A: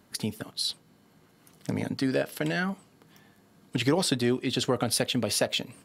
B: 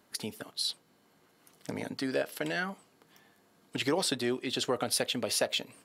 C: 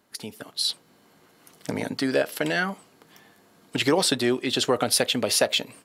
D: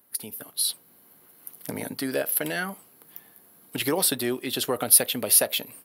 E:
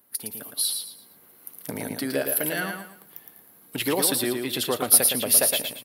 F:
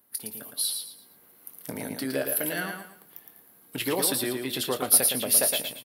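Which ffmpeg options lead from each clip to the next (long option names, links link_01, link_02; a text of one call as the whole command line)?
ffmpeg -i in.wav -af "bass=frequency=250:gain=-10,treble=frequency=4000:gain=0,volume=-2.5dB" out.wav
ffmpeg -i in.wav -af "dynaudnorm=framelen=340:gausssize=3:maxgain=8dB" out.wav
ffmpeg -i in.wav -af "aexciter=amount=11.1:drive=5.3:freq=10000,volume=-4.5dB" out.wav
ffmpeg -i in.wav -af "aecho=1:1:113|226|339|452:0.531|0.165|0.051|0.0158" out.wav
ffmpeg -i in.wav -filter_complex "[0:a]asplit=2[link_01][link_02];[link_02]adelay=23,volume=-11.5dB[link_03];[link_01][link_03]amix=inputs=2:normalize=0,volume=-3dB" out.wav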